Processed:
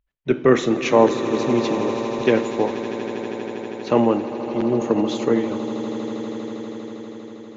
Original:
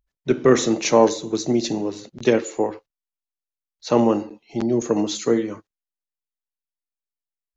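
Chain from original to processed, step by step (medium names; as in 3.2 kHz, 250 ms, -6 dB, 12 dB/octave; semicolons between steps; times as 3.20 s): resonant high shelf 3.9 kHz -8.5 dB, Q 1.5; echo with a slow build-up 80 ms, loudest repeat 8, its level -16 dB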